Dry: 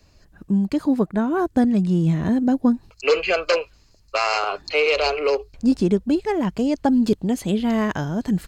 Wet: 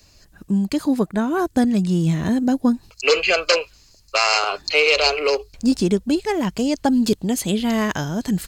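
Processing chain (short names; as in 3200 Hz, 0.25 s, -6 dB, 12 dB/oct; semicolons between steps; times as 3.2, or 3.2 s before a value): high shelf 2900 Hz +12 dB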